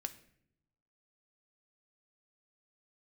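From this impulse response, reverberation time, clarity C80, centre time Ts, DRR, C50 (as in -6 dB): no single decay rate, 18.0 dB, 5 ms, 8.5 dB, 15.0 dB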